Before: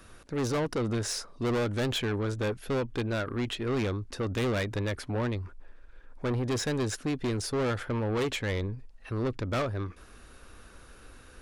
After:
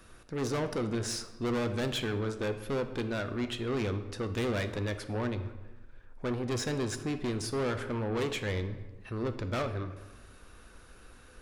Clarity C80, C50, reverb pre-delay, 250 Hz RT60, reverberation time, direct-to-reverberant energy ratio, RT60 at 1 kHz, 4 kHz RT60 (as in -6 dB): 13.0 dB, 10.5 dB, 3 ms, 1.3 s, 1.2 s, 8.0 dB, 1.2 s, 0.80 s